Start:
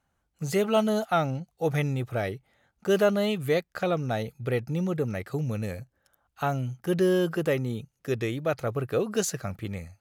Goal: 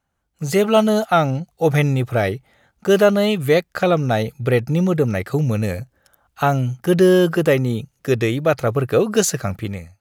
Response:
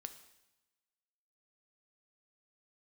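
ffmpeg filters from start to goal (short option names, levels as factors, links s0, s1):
-af "dynaudnorm=f=110:g=7:m=3.35"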